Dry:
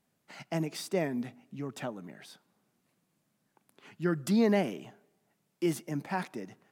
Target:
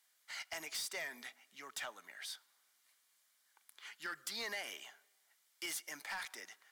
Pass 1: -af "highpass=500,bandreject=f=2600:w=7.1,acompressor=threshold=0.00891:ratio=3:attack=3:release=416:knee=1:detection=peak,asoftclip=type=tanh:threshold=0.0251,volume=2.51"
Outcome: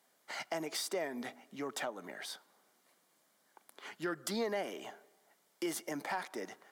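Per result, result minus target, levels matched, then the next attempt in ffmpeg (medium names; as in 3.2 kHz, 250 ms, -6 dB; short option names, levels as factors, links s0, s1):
500 Hz band +10.0 dB; saturation: distortion -13 dB
-af "highpass=1800,bandreject=f=2600:w=7.1,acompressor=threshold=0.00891:ratio=3:attack=3:release=416:knee=1:detection=peak,asoftclip=type=tanh:threshold=0.0251,volume=2.51"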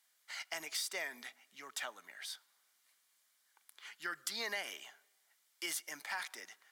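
saturation: distortion -14 dB
-af "highpass=1800,bandreject=f=2600:w=7.1,acompressor=threshold=0.00891:ratio=3:attack=3:release=416:knee=1:detection=peak,asoftclip=type=tanh:threshold=0.00708,volume=2.51"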